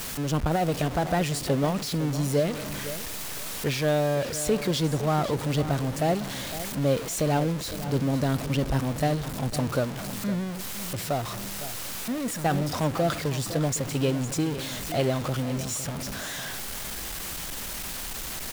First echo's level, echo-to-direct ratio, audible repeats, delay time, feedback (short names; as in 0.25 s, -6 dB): -13.0 dB, -12.5 dB, 2, 0.508 s, 24%